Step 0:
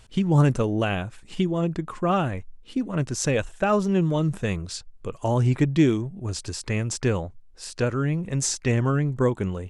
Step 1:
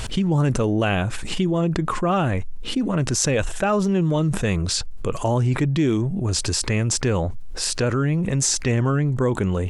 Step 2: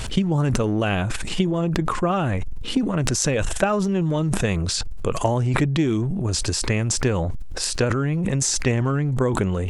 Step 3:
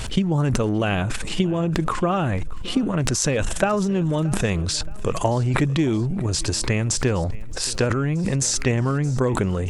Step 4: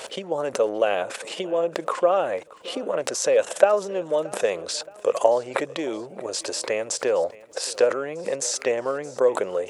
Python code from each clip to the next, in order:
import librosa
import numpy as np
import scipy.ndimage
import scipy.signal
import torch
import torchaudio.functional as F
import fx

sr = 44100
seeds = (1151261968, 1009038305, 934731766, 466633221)

y1 = fx.env_flatten(x, sr, amount_pct=70)
y1 = y1 * librosa.db_to_amplitude(-3.0)
y2 = fx.transient(y1, sr, attack_db=7, sustain_db=11)
y2 = y2 * librosa.db_to_amplitude(-2.5)
y3 = fx.echo_feedback(y2, sr, ms=624, feedback_pct=49, wet_db=-21.0)
y4 = fx.highpass_res(y3, sr, hz=530.0, q=4.2)
y4 = y4 * librosa.db_to_amplitude(-4.0)